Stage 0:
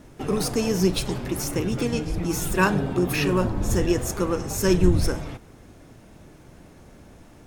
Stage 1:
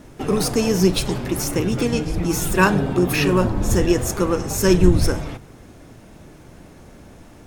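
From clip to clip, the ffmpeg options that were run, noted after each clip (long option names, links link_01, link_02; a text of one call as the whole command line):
ffmpeg -i in.wav -af "bandreject=frequency=46.07:width_type=h:width=4,bandreject=frequency=92.14:width_type=h:width=4,bandreject=frequency=138.21:width_type=h:width=4,volume=4.5dB" out.wav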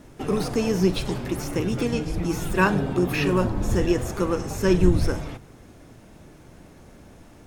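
ffmpeg -i in.wav -filter_complex "[0:a]acrossover=split=4000[link_01][link_02];[link_02]acompressor=threshold=-34dB:ratio=4:attack=1:release=60[link_03];[link_01][link_03]amix=inputs=2:normalize=0,volume=-4dB" out.wav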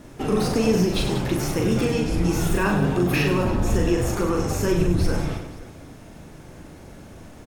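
ffmpeg -i in.wav -af "alimiter=limit=-17dB:level=0:latency=1:release=60,aecho=1:1:40|100|190|325|527.5:0.631|0.398|0.251|0.158|0.1,volume=3dB" out.wav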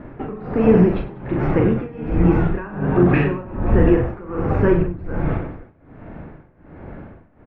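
ffmpeg -i in.wav -af "lowpass=frequency=2000:width=0.5412,lowpass=frequency=2000:width=1.3066,tremolo=f=1.3:d=0.91,volume=7.5dB" out.wav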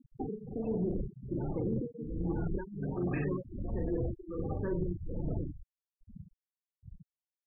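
ffmpeg -i in.wav -af "afftfilt=real='re*gte(hypot(re,im),0.141)':imag='im*gte(hypot(re,im),0.141)':win_size=1024:overlap=0.75,areverse,acompressor=threshold=-23dB:ratio=8,areverse,volume=-7dB" out.wav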